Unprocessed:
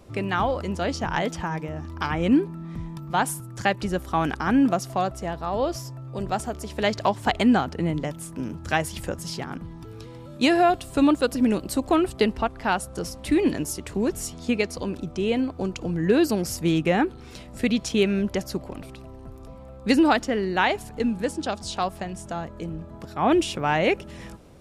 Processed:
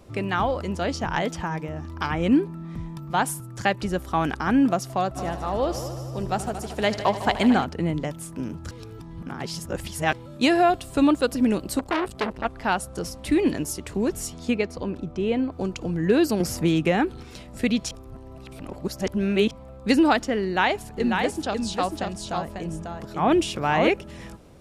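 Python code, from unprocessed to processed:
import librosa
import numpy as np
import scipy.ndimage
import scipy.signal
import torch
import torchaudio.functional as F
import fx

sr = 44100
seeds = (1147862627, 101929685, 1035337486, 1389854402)

y = fx.echo_heads(x, sr, ms=76, heads='all three', feedback_pct=54, wet_db=-15.5, at=(5.15, 7.63), fade=0.02)
y = fx.transformer_sat(y, sr, knee_hz=2000.0, at=(11.79, 12.45))
y = fx.high_shelf(y, sr, hz=3800.0, db=-11.5, at=(14.54, 15.52))
y = fx.band_squash(y, sr, depth_pct=70, at=(16.4, 17.23))
y = fx.echo_single(y, sr, ms=544, db=-4.5, at=(20.97, 23.88), fade=0.02)
y = fx.edit(y, sr, fx.reverse_span(start_s=8.71, length_s=1.42),
    fx.reverse_span(start_s=17.91, length_s=1.6), tone=tone)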